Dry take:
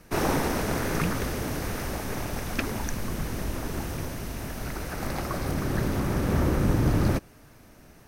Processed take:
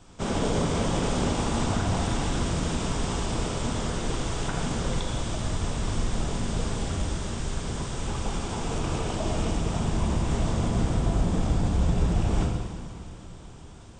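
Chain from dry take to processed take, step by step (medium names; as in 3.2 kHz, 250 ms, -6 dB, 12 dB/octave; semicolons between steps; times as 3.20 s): peak limiter -19.5 dBFS, peak gain reduction 8 dB; reverberation, pre-delay 3 ms, DRR -1 dB; speed mistake 78 rpm record played at 45 rpm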